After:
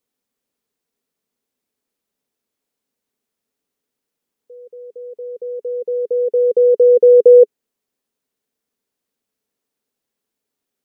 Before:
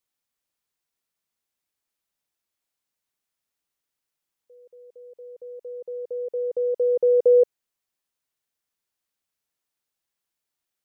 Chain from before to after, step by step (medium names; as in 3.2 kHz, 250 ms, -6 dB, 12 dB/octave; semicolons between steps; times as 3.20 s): in parallel at +1 dB: peak limiter -19.5 dBFS, peak gain reduction 8.5 dB; on the sum: small resonant body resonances 250/420 Hz, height 14 dB, ringing for 30 ms; trim -4.5 dB